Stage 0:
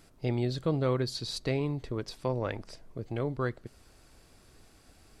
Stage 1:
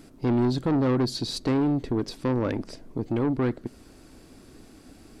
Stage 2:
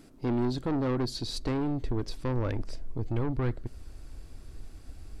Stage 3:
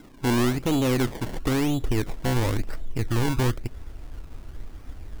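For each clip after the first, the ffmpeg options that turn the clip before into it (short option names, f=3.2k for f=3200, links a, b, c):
-af "equalizer=f=270:t=o:w=1.2:g=12.5,asoftclip=type=tanh:threshold=-23.5dB,volume=4.5dB"
-af "asubboost=boost=11.5:cutoff=73,volume=-4.5dB"
-filter_complex "[0:a]acrossover=split=890[a][b];[b]alimiter=level_in=9dB:limit=-24dB:level=0:latency=1:release=106,volume=-9dB[c];[a][c]amix=inputs=2:normalize=0,acrusher=samples=24:mix=1:aa=0.000001:lfo=1:lforange=24:lforate=0.98,volume=6dB"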